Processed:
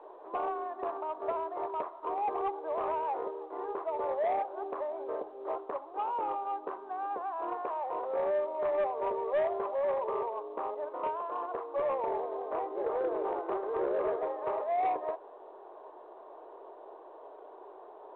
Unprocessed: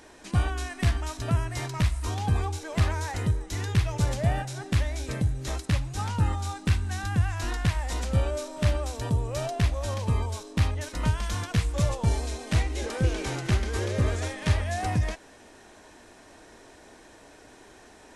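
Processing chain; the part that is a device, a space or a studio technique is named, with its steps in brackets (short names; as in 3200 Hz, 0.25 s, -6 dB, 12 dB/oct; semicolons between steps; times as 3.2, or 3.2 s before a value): elliptic band-pass 380–1100 Hz, stop band 80 dB; 8.77–10.23 comb 5.1 ms, depth 69%; telephone (BPF 300–3200 Hz; soft clip -29.5 dBFS, distortion -18 dB; gain +6 dB; µ-law 64 kbps 8000 Hz)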